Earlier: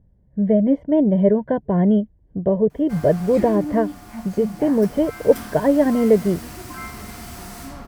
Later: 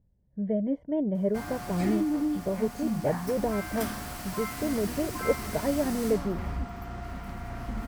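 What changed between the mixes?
speech -11.5 dB; background: entry -1.55 s

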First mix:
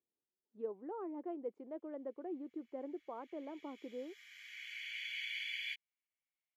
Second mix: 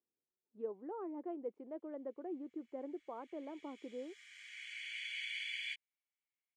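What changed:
background: remove boxcar filter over 5 samples; master: add distance through air 110 m

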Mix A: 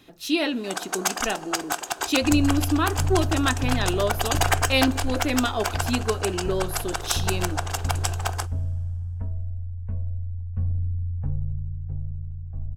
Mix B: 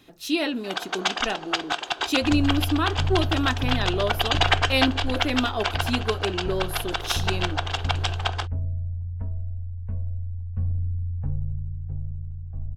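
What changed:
speech: send -7.0 dB; first sound: add resonant low-pass 3.5 kHz, resonance Q 2.9; second sound: send off

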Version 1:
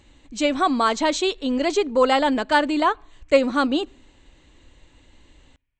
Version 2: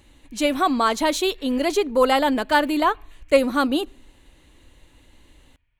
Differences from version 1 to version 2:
speech: remove brick-wall FIR low-pass 8.4 kHz; background +9.0 dB

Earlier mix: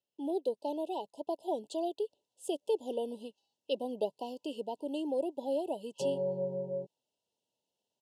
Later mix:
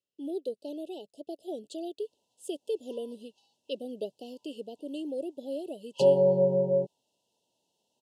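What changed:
speech: add Butterworth band-stop 1.1 kHz, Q 0.68; background +11.0 dB

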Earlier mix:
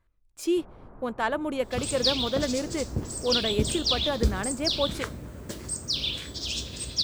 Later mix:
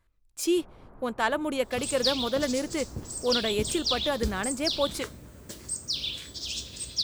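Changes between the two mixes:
first sound -3.0 dB; second sound -7.5 dB; master: add treble shelf 3 kHz +8 dB

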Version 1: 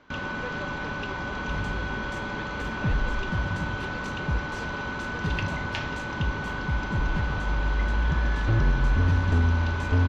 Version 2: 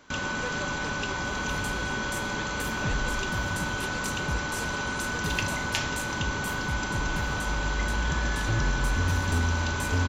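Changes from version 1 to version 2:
second sound -5.0 dB; master: remove distance through air 230 m

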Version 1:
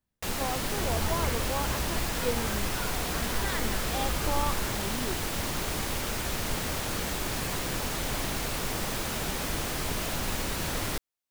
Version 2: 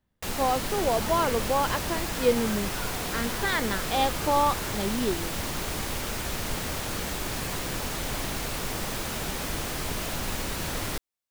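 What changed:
speech +9.0 dB; second sound: add high-pass 140 Hz

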